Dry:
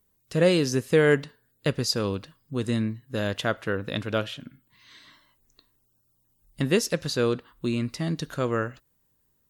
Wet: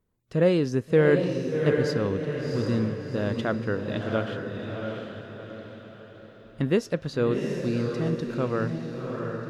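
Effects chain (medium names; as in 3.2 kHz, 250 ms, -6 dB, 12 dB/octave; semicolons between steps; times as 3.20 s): low-pass 1.3 kHz 6 dB/octave; on a send: echo that smears into a reverb 714 ms, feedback 45%, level -4 dB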